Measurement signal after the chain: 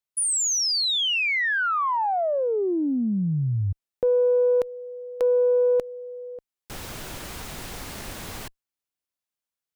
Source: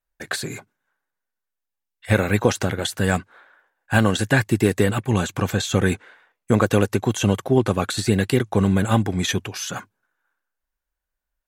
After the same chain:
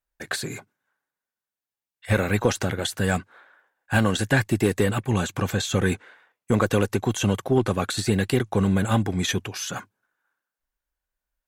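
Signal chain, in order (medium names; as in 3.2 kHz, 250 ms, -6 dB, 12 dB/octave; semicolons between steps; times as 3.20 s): single-diode clipper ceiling -4.5 dBFS; trim -1.5 dB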